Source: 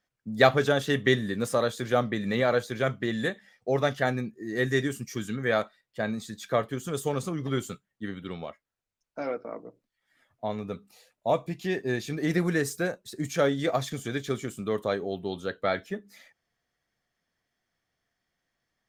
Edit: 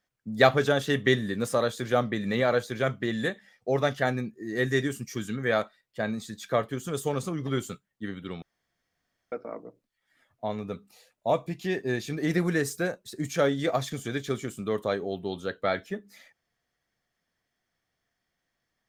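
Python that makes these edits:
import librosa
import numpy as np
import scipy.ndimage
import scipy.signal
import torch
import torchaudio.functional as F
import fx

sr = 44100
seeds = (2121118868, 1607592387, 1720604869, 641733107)

y = fx.edit(x, sr, fx.room_tone_fill(start_s=8.42, length_s=0.9), tone=tone)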